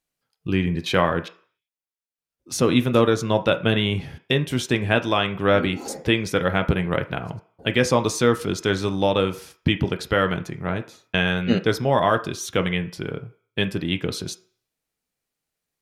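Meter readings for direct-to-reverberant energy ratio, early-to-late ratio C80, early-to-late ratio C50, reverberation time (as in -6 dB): 7.5 dB, 19.5 dB, 15.5 dB, 0.50 s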